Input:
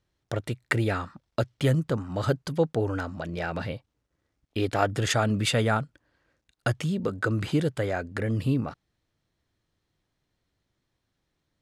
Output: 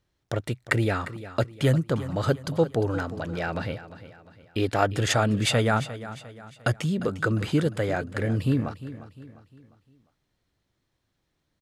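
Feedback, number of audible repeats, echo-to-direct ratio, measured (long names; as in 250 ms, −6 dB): 42%, 3, −13.5 dB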